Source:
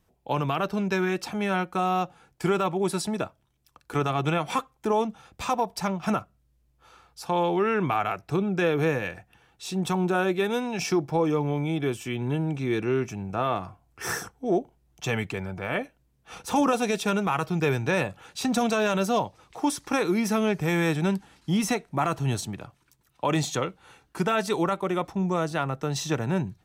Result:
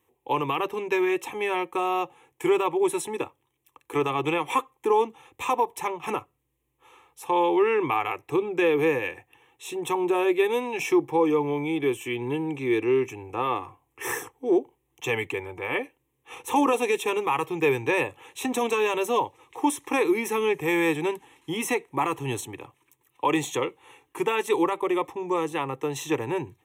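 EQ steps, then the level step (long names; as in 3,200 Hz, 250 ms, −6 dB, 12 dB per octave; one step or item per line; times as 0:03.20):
high-pass filter 160 Hz 12 dB per octave
phaser with its sweep stopped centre 970 Hz, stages 8
+4.5 dB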